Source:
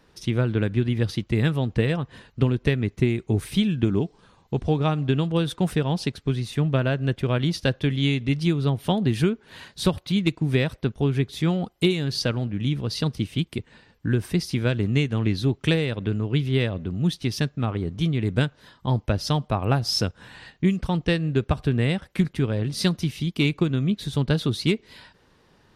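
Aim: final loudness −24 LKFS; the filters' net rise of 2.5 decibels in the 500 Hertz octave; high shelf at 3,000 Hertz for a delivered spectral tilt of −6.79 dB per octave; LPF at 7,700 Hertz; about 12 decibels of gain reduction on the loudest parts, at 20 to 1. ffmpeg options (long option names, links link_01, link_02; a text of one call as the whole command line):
ffmpeg -i in.wav -af "lowpass=7700,equalizer=frequency=500:width_type=o:gain=3.5,highshelf=frequency=3000:gain=-8.5,acompressor=threshold=-27dB:ratio=20,volume=9.5dB" out.wav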